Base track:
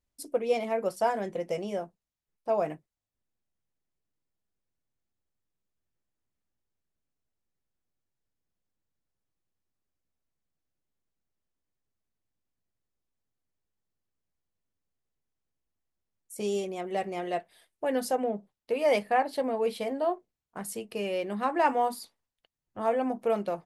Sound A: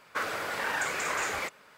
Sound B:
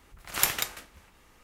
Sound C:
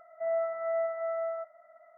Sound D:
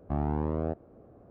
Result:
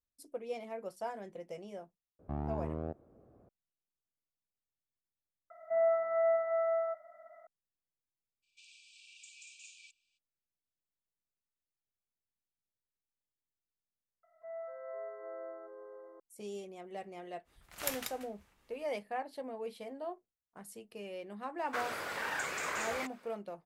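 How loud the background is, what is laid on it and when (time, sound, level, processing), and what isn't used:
base track −13 dB
0:02.19: mix in D −8 dB
0:05.50: mix in C + low-shelf EQ 490 Hz +3.5 dB
0:08.42: mix in A −16.5 dB, fades 0.02 s + brick-wall band-pass 2,300–8,900 Hz
0:14.23: mix in C −14 dB + delay with pitch and tempo change per echo 188 ms, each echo −4 semitones, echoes 3, each echo −6 dB
0:17.44: mix in B −12 dB, fades 0.05 s
0:21.58: mix in A −6 dB

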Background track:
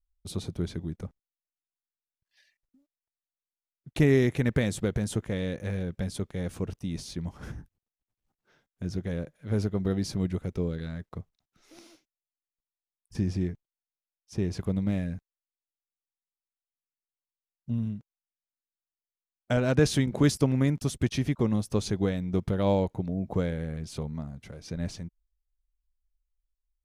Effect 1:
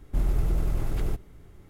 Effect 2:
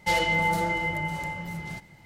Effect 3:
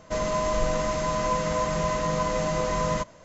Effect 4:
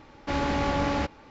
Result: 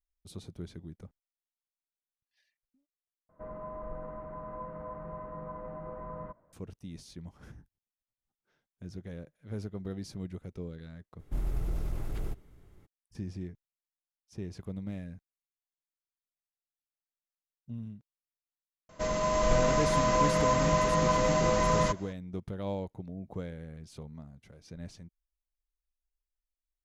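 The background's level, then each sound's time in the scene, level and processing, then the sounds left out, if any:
background track −10.5 dB
0:03.29: overwrite with 3 −15.5 dB + low-pass filter 1,400 Hz 24 dB per octave
0:11.18: mix in 1 −7.5 dB, fades 0.02 s
0:18.89: mix in 3 −4 dB + automatic gain control gain up to 4 dB
not used: 2, 4

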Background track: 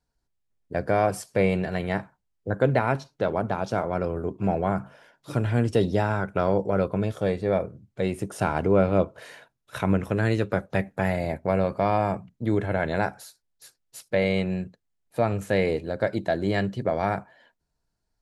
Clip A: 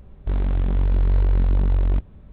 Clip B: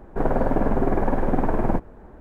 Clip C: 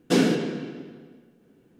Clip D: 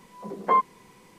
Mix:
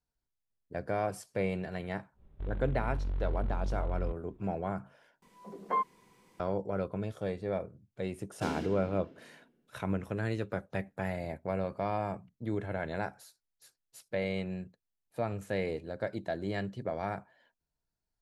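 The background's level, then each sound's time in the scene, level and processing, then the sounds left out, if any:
background track −10 dB
0:02.13: mix in A −15 dB, fades 0.10 s
0:05.22: overwrite with D −9.5 dB
0:08.31: mix in C −16.5 dB
not used: B

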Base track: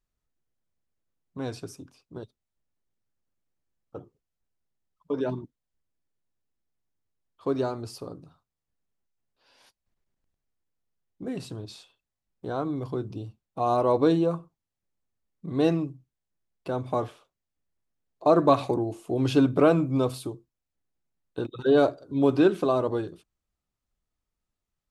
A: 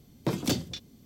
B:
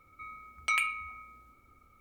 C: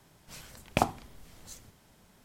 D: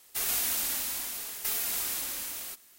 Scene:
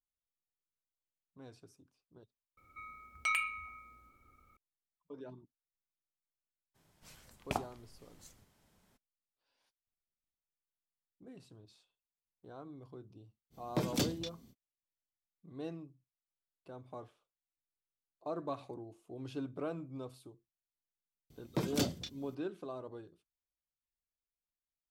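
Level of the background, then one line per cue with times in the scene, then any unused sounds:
base track −20 dB
0:02.57: overwrite with B −4 dB
0:06.74: mix in C −10 dB, fades 0.02 s
0:13.50: mix in A −5 dB, fades 0.05 s
0:21.30: mix in A −5.5 dB
not used: D

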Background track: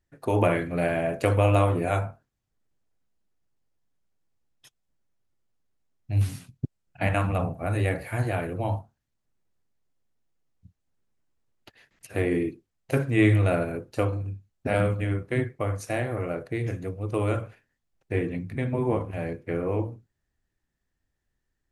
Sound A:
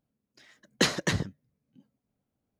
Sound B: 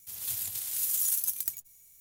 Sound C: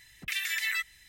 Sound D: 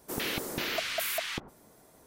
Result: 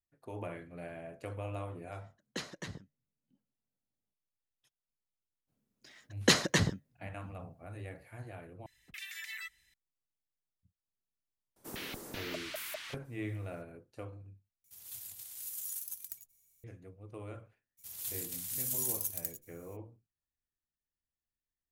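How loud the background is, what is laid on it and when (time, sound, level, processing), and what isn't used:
background track −19.5 dB
0:01.55: mix in A −16 dB
0:05.47: mix in A −1 dB, fades 0.02 s + high-shelf EQ 5,500 Hz +3.5 dB
0:08.66: overwrite with C −13 dB
0:11.56: mix in D −9.5 dB + frequency shifter −36 Hz
0:14.64: overwrite with B −12.5 dB
0:17.77: mix in B −6 dB, fades 0.02 s

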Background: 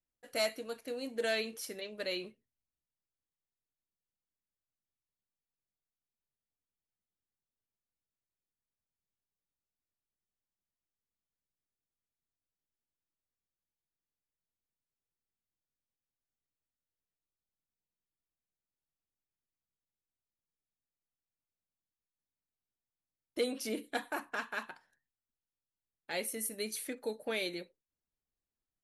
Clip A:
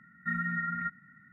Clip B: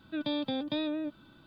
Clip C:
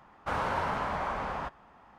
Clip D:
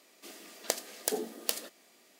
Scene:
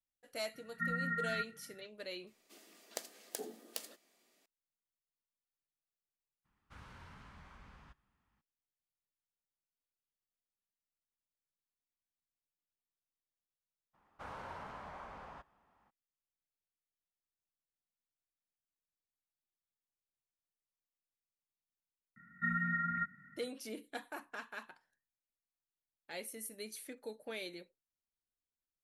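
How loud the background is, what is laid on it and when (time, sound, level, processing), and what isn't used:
background −8 dB
0:00.54: mix in A −4.5 dB
0:02.27: mix in D −11.5 dB
0:06.44: mix in C −2.5 dB, fades 0.02 s + guitar amp tone stack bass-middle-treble 6-0-2
0:13.93: mix in C −16.5 dB, fades 0.02 s + high-shelf EQ 5,200 Hz +3 dB
0:22.16: mix in A −2.5 dB + notch filter 460 Hz, Q 15
not used: B

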